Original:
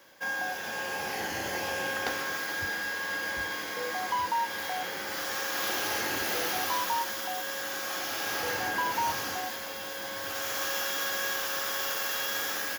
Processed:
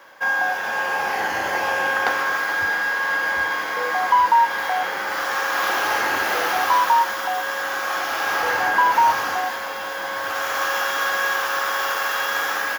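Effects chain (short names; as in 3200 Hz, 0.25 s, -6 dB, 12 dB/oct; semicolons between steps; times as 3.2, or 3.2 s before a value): bell 1100 Hz +14.5 dB 2.4 oct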